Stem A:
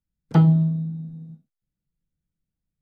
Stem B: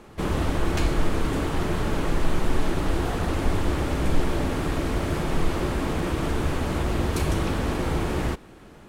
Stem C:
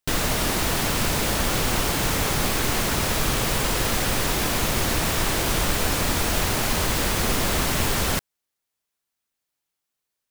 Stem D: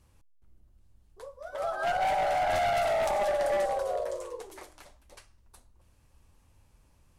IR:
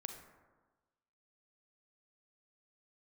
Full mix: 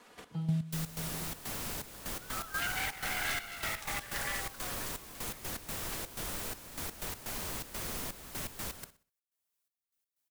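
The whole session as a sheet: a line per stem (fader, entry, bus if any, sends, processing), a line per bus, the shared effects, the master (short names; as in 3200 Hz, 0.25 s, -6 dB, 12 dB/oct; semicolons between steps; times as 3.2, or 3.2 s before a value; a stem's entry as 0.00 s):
-9.5 dB, 0.00 s, no send, no echo send, harmonic-percussive split percussive -16 dB
-13.5 dB, 0.00 s, no send, no echo send, minimum comb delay 4.1 ms; HPF 730 Hz 6 dB/oct; compressor 10:1, threshold -40 dBFS, peak gain reduction 12 dB
-19.5 dB, 0.65 s, no send, echo send -20.5 dB, high shelf 6400 Hz +9.5 dB
+3.0 dB, 0.75 s, no send, no echo send, HPF 1300 Hz 24 dB/oct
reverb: off
echo: feedback echo 63 ms, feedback 30%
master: step gate "xx..x.x.xxx.x" 124 bpm -12 dB; three-band squash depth 40%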